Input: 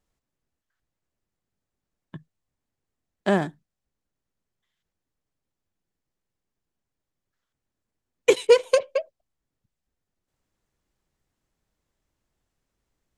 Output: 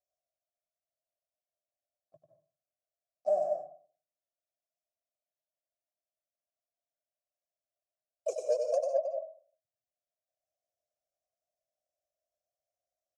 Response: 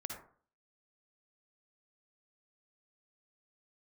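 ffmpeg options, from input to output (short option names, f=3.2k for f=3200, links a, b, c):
-filter_complex "[0:a]asplit=2[a][b];[1:a]atrim=start_sample=2205,adelay=95[c];[b][c]afir=irnorm=-1:irlink=0,volume=-1.5dB[d];[a][d]amix=inputs=2:normalize=0,asplit=2[e][f];[f]asetrate=55563,aresample=44100,atempo=0.793701,volume=-14dB[g];[e][g]amix=inputs=2:normalize=0,firequalizer=gain_entry='entry(110,0);entry(200,-17);entry(420,-15);entry(600,5);entry(900,-25);entry(3300,-29);entry(5400,11);entry(12000,5)':delay=0.05:min_phase=1,acontrast=56,asplit=3[h][i][j];[h]bandpass=f=730:t=q:w=8,volume=0dB[k];[i]bandpass=f=1.09k:t=q:w=8,volume=-6dB[l];[j]bandpass=f=2.44k:t=q:w=8,volume=-9dB[m];[k][l][m]amix=inputs=3:normalize=0,volume=-2.5dB"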